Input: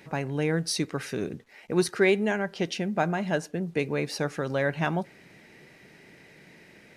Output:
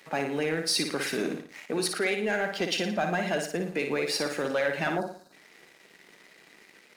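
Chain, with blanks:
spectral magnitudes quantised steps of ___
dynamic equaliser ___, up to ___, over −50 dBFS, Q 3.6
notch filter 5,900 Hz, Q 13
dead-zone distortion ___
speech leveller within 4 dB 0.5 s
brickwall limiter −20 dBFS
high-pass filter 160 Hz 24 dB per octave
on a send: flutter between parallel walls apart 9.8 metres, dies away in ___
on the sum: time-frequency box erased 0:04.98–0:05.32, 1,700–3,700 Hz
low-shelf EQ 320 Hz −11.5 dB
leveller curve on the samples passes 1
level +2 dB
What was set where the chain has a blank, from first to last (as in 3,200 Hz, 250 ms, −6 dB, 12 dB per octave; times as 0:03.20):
15 dB, 990 Hz, −5 dB, −56.5 dBFS, 0.51 s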